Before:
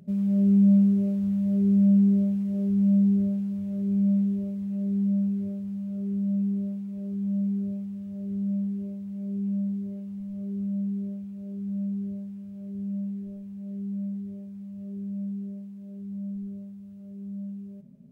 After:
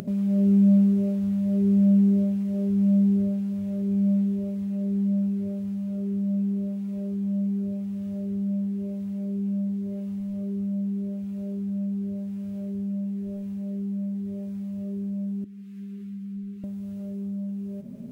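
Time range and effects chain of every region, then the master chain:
15.44–16.64 s: Butterworth band-stop 660 Hz, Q 0.55 + tone controls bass -15 dB, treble -8 dB + three-phase chorus
whole clip: peaking EQ 160 Hz -9 dB 0.53 oct; upward compressor, threshold -30 dBFS; bass shelf 65 Hz -7 dB; trim +5 dB

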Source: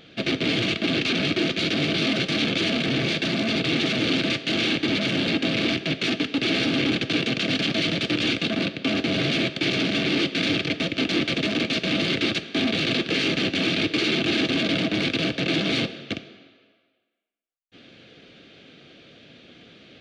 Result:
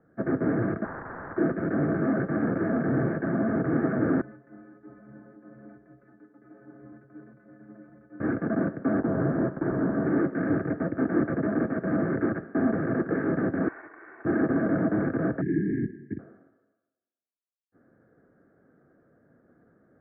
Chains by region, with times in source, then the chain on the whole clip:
0.84–1.38 s: send-on-delta sampling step -33.5 dBFS + spectrum-flattening compressor 10:1
4.21–8.20 s: compression 5:1, threshold -28 dBFS + inharmonic resonator 63 Hz, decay 0.47 s, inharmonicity 0.03 + three bands expanded up and down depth 70%
9.00–10.06 s: block-companded coder 3-bit + low-pass 1.6 kHz + de-hum 99.16 Hz, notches 27
13.68–14.25 s: comb filter that takes the minimum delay 2.7 ms + band-pass filter 2.2 kHz, Q 1.7 + transient shaper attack -11 dB, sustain +7 dB
15.41–16.19 s: brick-wall FIR band-stop 430–1600 Hz + careless resampling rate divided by 8×, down filtered, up hold
whole clip: steep low-pass 1.7 kHz 72 dB/octave; three bands expanded up and down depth 40%

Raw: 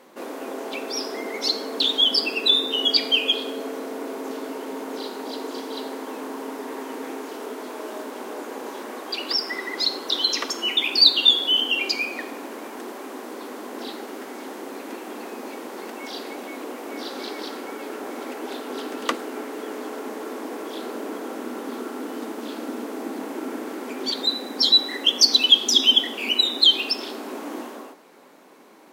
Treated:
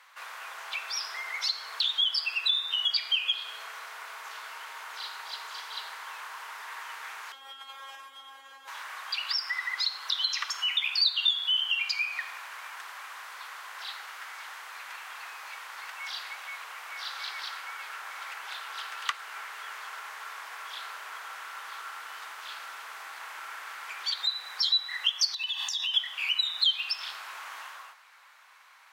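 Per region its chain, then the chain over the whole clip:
7.32–8.68 s: feedback comb 270 Hz, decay 0.38 s, mix 100% + small resonant body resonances 240/380/3200 Hz, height 18 dB, ringing for 30 ms + level flattener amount 70%
25.34–25.94 s: comb 1.1 ms, depth 93% + compression 10:1, threshold -25 dBFS
whole clip: high-pass 1.2 kHz 24 dB/octave; treble shelf 5.2 kHz -11 dB; compression 2:1, threshold -33 dBFS; trim +3.5 dB

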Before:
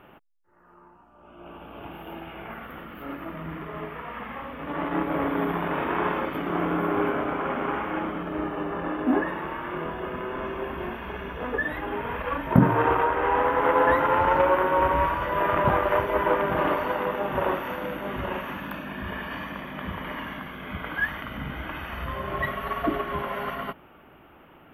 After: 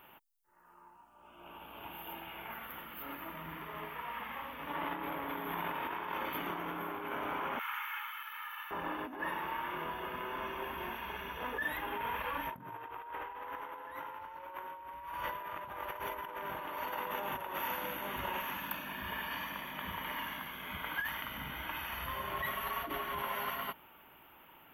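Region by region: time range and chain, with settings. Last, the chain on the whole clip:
7.59–8.71 s: inverse Chebyshev high-pass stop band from 470 Hz, stop band 50 dB + treble shelf 12 kHz +11.5 dB + comb 2.3 ms, depth 43%
whole clip: peaking EQ 930 Hz +9 dB 0.25 oct; compressor with a negative ratio -27 dBFS, ratio -1; pre-emphasis filter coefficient 0.9; trim +3 dB

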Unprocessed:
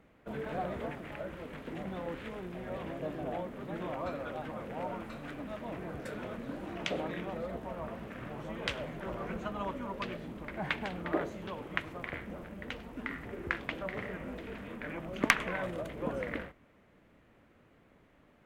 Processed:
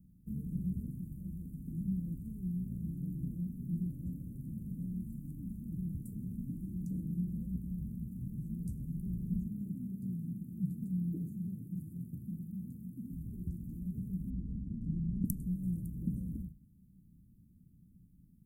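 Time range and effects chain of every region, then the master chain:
9.46–13.11 s: high-pass 100 Hz 24 dB/octave + peaking EQ 5.8 kHz -9 dB 0.26 oct
14.30–15.25 s: square wave that keeps the level + tape spacing loss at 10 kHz 36 dB + transformer saturation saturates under 780 Hz
whole clip: inverse Chebyshev band-stop 710–3400 Hz, stop band 70 dB; peaking EQ 180 Hz +6 dB 0.31 oct; hum notches 50/100/150/200 Hz; trim +6.5 dB

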